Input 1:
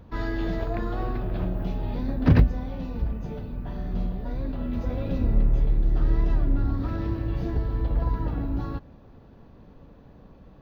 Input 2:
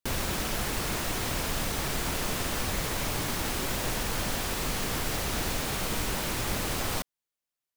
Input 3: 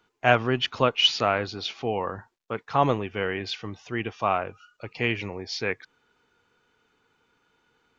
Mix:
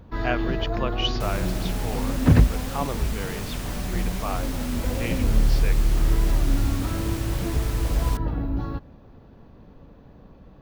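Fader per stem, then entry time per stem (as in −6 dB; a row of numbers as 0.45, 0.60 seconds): +1.5, −5.5, −7.5 decibels; 0.00, 1.15, 0.00 seconds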